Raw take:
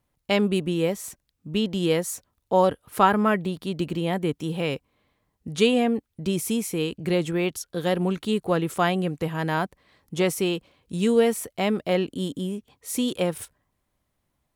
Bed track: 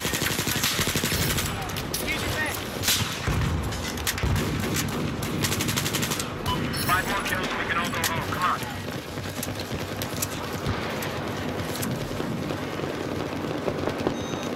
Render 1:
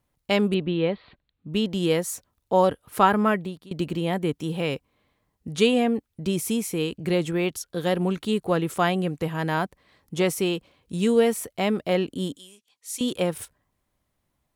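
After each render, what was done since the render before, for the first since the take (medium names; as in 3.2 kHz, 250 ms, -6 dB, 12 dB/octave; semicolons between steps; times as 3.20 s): 0.54–1.54 s: steep low-pass 4.3 kHz 96 dB/octave; 3.29–3.71 s: fade out, to -21 dB; 12.36–13.01 s: band-pass filter 6.4 kHz, Q 0.67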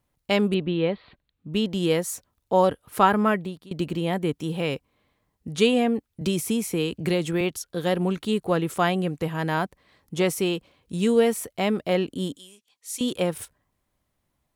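6.21–7.41 s: three bands compressed up and down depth 70%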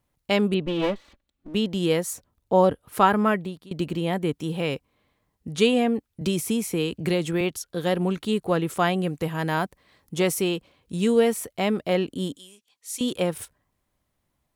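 0.66–1.55 s: comb filter that takes the minimum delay 3.5 ms; 2.13–2.87 s: tilt shelf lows +3.5 dB, about 790 Hz; 9.03–10.42 s: treble shelf 6.4 kHz +4.5 dB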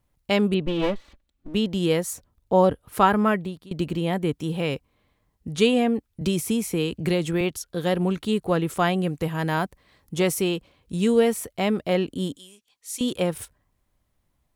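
bass shelf 73 Hz +10 dB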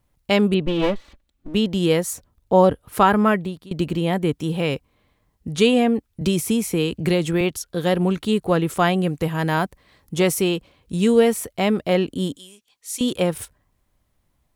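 trim +3.5 dB; peak limiter -3 dBFS, peak gain reduction 2 dB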